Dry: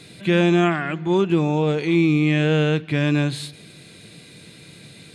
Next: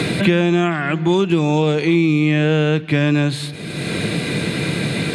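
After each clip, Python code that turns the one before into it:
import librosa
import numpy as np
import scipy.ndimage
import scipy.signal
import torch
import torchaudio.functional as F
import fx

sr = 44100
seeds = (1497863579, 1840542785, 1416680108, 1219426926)

y = fx.band_squash(x, sr, depth_pct=100)
y = F.gain(torch.from_numpy(y), 2.5).numpy()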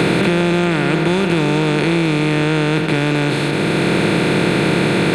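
y = fx.bin_compress(x, sr, power=0.2)
y = F.gain(torch.from_numpy(y), -5.5).numpy()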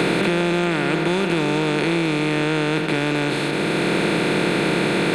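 y = fx.peak_eq(x, sr, hz=86.0, db=-14.5, octaves=1.1)
y = F.gain(torch.from_numpy(y), -3.0).numpy()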